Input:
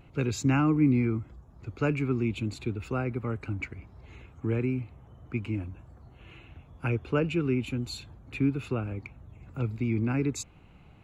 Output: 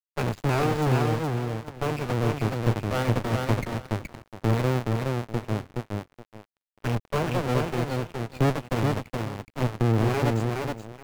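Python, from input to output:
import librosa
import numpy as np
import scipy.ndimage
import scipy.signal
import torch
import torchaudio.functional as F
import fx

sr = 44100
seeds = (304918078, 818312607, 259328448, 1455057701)

p1 = fx.halfwave_hold(x, sr)
p2 = scipy.signal.sosfilt(scipy.signal.butter(4, 83.0, 'highpass', fs=sr, output='sos'), p1)
p3 = fx.cheby_harmonics(p2, sr, harmonics=(3, 5, 8), levels_db=(-12, -22, -11), full_scale_db=-7.0)
p4 = fx.peak_eq(p3, sr, hz=120.0, db=5.5, octaves=1.6)
p5 = fx.rider(p4, sr, range_db=10, speed_s=2.0)
p6 = p5 + fx.echo_feedback(p5, sr, ms=421, feedback_pct=27, wet_db=-3, dry=0)
p7 = np.sign(p6) * np.maximum(np.abs(p6) - 10.0 ** (-35.0 / 20.0), 0.0)
p8 = fx.high_shelf(p7, sr, hz=3900.0, db=-8.5)
p9 = fx.record_warp(p8, sr, rpm=78.0, depth_cents=100.0)
y = p9 * 10.0 ** (-3.5 / 20.0)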